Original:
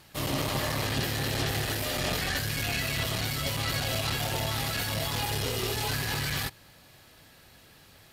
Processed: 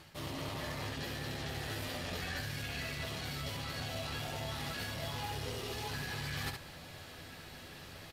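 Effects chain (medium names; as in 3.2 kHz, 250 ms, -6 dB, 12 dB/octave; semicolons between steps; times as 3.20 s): treble shelf 8 kHz -9 dB; reverse; compression 16:1, threshold -42 dBFS, peak gain reduction 18 dB; reverse; early reflections 12 ms -5 dB, 70 ms -5.5 dB; trim +4 dB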